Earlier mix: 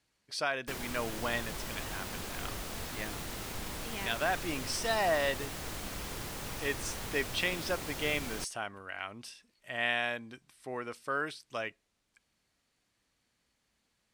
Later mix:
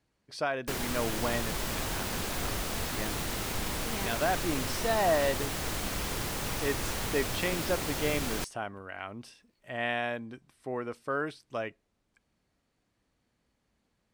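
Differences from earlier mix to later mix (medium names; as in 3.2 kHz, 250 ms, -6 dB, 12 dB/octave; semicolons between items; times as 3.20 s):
speech: add tilt shelf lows +6 dB, about 1.3 kHz; background +6.5 dB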